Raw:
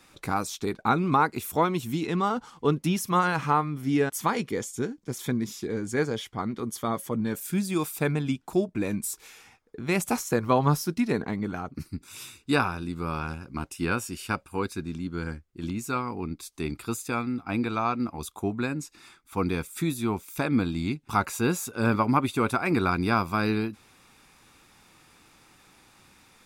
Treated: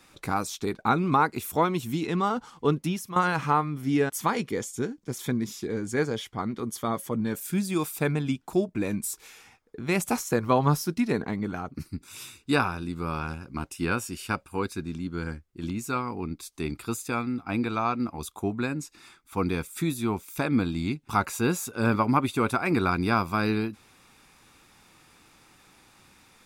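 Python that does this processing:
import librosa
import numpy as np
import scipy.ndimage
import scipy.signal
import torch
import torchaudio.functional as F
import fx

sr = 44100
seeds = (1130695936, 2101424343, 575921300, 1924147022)

y = fx.edit(x, sr, fx.fade_out_to(start_s=2.74, length_s=0.42, floor_db=-12.5), tone=tone)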